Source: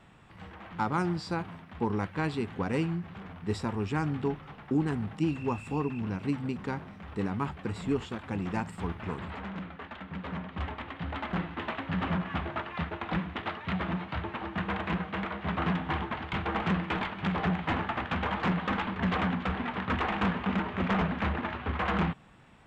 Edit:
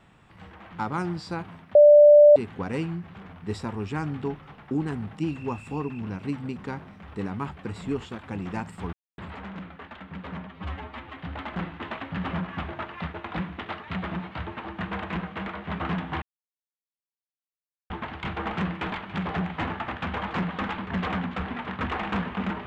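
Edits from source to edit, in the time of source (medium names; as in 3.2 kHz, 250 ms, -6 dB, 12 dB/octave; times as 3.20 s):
1.75–2.36 s: bleep 590 Hz -9 dBFS
8.93–9.18 s: mute
10.47–10.93 s: stretch 1.5×
15.99 s: insert silence 1.68 s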